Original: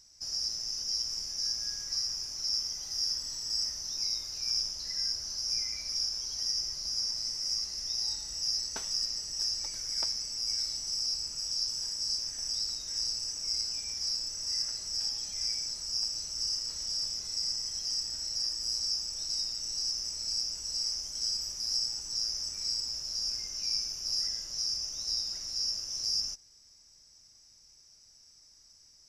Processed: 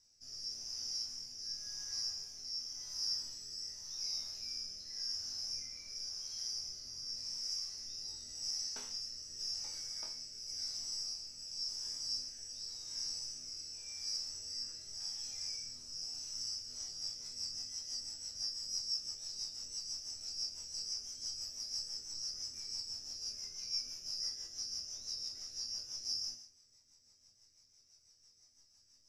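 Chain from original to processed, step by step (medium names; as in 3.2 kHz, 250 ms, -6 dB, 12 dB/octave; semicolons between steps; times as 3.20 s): chord resonator E2 major, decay 0.56 s; rotary cabinet horn 0.9 Hz, later 6 Hz, at 16.34 s; trim +9.5 dB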